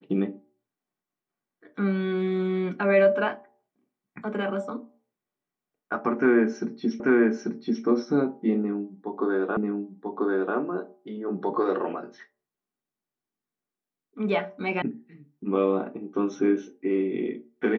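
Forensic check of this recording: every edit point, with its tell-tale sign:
7 repeat of the last 0.84 s
9.57 repeat of the last 0.99 s
14.82 sound cut off

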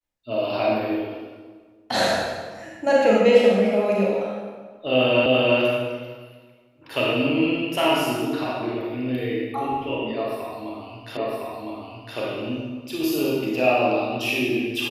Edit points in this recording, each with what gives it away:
5.26 repeat of the last 0.34 s
11.17 repeat of the last 1.01 s

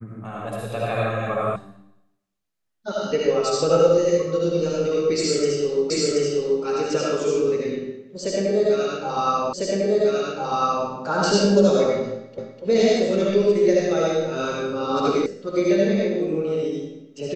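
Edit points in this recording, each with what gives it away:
1.56 sound cut off
5.9 repeat of the last 0.73 s
9.53 repeat of the last 1.35 s
12.38 repeat of the last 0.25 s
15.26 sound cut off

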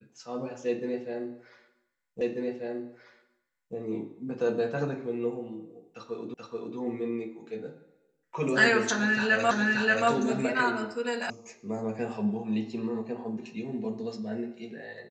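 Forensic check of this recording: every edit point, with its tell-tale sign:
2.21 repeat of the last 1.54 s
6.34 repeat of the last 0.43 s
9.51 repeat of the last 0.58 s
11.3 sound cut off

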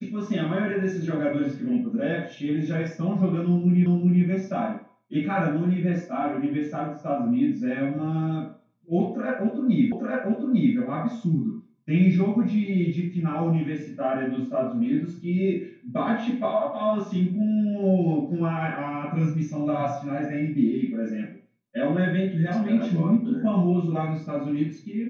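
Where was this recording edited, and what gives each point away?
3.86 repeat of the last 0.39 s
9.92 repeat of the last 0.85 s

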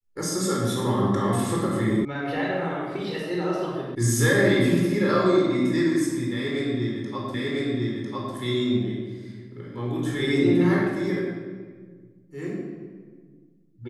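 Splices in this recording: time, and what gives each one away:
2.05 sound cut off
3.95 sound cut off
7.34 repeat of the last 1 s

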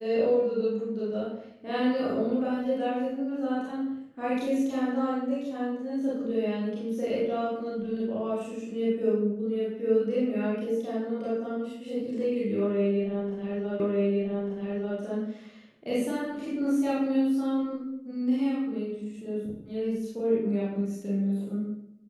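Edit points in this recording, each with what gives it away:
13.8 repeat of the last 1.19 s

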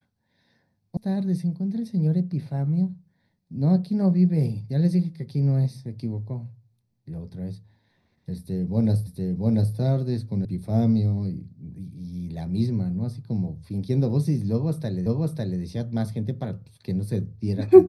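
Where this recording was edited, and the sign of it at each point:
0.97 sound cut off
9.07 repeat of the last 0.69 s
10.45 sound cut off
15.06 repeat of the last 0.55 s

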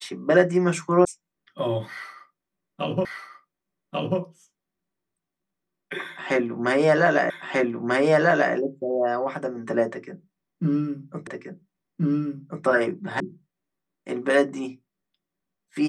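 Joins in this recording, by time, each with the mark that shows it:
1.05 sound cut off
3.05 repeat of the last 1.14 s
7.3 repeat of the last 1.24 s
11.27 repeat of the last 1.38 s
13.2 sound cut off

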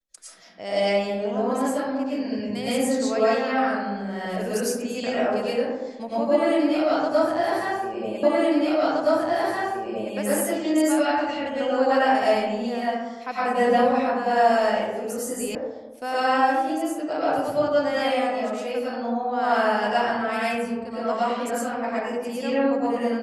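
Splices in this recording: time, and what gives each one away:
8.23 repeat of the last 1.92 s
15.55 sound cut off

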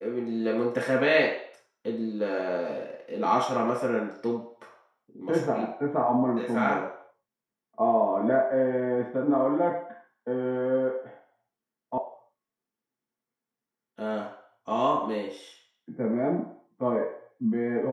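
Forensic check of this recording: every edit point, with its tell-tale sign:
11.98 sound cut off

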